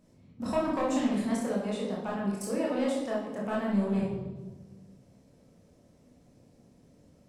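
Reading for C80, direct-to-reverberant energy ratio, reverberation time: 5.5 dB, -4.5 dB, 1.3 s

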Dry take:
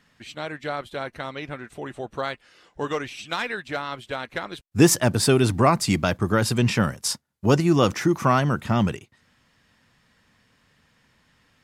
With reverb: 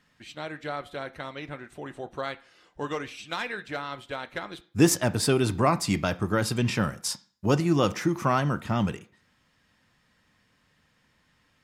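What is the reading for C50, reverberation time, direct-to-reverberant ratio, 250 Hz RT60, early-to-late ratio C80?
19.5 dB, 0.45 s, 11.0 dB, 0.45 s, 23.5 dB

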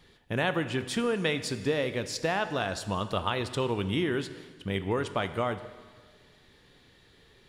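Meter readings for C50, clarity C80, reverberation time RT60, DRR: 12.0 dB, 13.5 dB, 1.6 s, 10.5 dB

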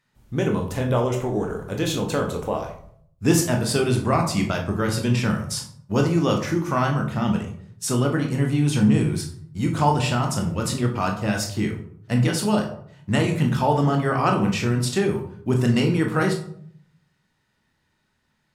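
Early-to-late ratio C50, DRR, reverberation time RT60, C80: 8.5 dB, 2.0 dB, 0.60 s, 11.5 dB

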